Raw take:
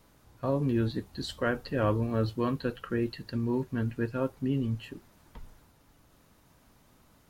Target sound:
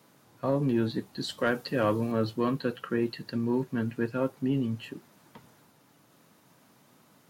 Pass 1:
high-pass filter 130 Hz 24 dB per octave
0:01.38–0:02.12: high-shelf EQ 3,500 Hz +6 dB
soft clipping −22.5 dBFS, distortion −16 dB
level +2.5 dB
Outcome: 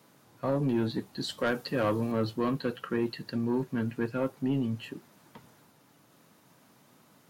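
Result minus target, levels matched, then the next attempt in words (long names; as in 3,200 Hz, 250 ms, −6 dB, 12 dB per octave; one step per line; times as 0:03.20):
soft clipping: distortion +10 dB
high-pass filter 130 Hz 24 dB per octave
0:01.38–0:02.12: high-shelf EQ 3,500 Hz +6 dB
soft clipping −16 dBFS, distortion −25 dB
level +2.5 dB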